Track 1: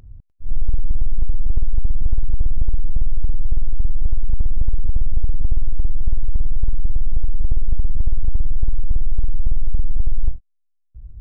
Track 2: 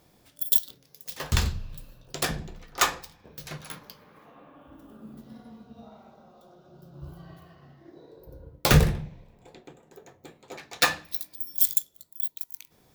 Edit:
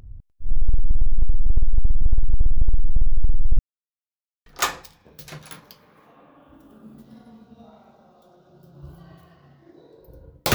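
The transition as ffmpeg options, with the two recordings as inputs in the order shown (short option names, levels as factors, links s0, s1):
-filter_complex "[0:a]apad=whole_dur=10.54,atrim=end=10.54,asplit=2[s0][s1];[s0]atrim=end=3.59,asetpts=PTS-STARTPTS,afade=t=out:st=3.586:d=0.004:c=hsin[s2];[s1]atrim=start=3.59:end=4.46,asetpts=PTS-STARTPTS,volume=0[s3];[1:a]atrim=start=2.65:end=8.73,asetpts=PTS-STARTPTS,afade=t=in:d=0.004:c=hsin[s4];[s2][s3][s4]concat=n=3:v=0:a=1"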